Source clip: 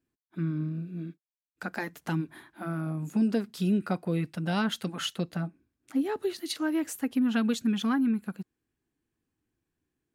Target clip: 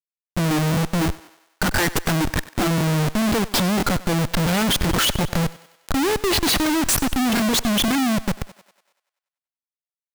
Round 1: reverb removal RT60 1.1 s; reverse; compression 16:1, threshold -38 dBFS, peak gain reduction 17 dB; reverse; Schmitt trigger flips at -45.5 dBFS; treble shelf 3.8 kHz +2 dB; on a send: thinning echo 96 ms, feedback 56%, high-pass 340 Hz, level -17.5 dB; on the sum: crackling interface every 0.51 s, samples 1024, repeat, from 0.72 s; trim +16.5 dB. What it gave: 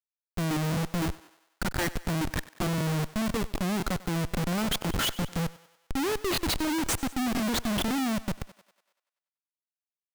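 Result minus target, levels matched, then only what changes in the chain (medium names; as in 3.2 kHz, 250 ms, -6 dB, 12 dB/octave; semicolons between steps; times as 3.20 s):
compression: peak gain reduction +9.5 dB
change: compression 16:1, threshold -28 dBFS, peak gain reduction 7.5 dB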